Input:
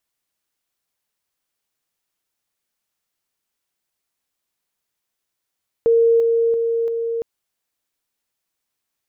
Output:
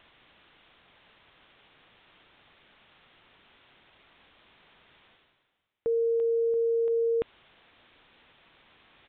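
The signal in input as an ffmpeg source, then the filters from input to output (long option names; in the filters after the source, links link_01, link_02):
-f lavfi -i "aevalsrc='pow(10,(-11-3*floor(t/0.34))/20)*sin(2*PI*461*t)':duration=1.36:sample_rate=44100"
-af "alimiter=limit=-22.5dB:level=0:latency=1,areverse,acompressor=mode=upward:threshold=-31dB:ratio=2.5,areverse,aresample=8000,aresample=44100"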